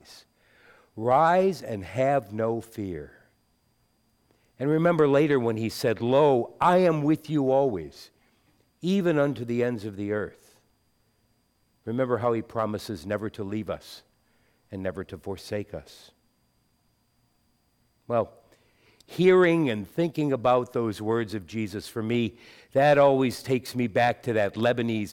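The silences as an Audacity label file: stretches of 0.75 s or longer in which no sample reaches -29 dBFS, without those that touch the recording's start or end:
3.020000	4.610000	silence
7.820000	8.840000	silence
10.260000	11.880000	silence
13.750000	14.730000	silence
15.790000	18.100000	silence
18.240000	19.190000	silence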